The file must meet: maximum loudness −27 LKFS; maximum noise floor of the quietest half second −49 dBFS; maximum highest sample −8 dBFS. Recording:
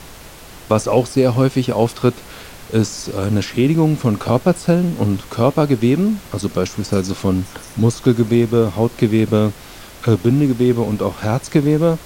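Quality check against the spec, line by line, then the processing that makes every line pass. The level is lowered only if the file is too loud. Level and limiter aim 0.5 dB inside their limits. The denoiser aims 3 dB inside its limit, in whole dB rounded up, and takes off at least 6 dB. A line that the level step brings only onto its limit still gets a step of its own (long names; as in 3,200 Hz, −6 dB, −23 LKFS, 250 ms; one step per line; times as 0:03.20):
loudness −17.5 LKFS: out of spec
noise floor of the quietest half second −38 dBFS: out of spec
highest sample −2.0 dBFS: out of spec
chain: broadband denoise 6 dB, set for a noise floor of −38 dBFS
level −10 dB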